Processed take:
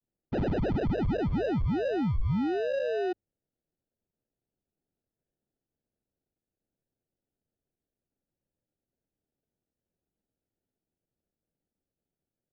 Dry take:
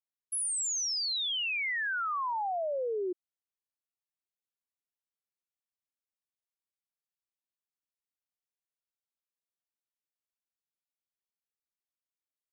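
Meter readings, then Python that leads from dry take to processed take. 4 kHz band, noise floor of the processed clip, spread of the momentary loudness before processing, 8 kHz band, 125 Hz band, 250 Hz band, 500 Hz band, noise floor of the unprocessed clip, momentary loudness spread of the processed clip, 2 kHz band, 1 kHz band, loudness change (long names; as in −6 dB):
−16.5 dB, below −85 dBFS, 6 LU, below −30 dB, can't be measured, +19.5 dB, +6.5 dB, below −85 dBFS, 4 LU, −8.0 dB, −4.0 dB, +1.0 dB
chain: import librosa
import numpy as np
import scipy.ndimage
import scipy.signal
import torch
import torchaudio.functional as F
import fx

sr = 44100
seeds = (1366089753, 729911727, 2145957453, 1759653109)

y = fx.sample_hold(x, sr, seeds[0], rate_hz=1100.0, jitter_pct=0)
y = scipy.signal.sosfilt(scipy.signal.butter(4, 4300.0, 'lowpass', fs=sr, output='sos'), y)
y = fx.tilt_shelf(y, sr, db=6.5, hz=970.0)
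y = fx.hum_notches(y, sr, base_hz=50, count=2)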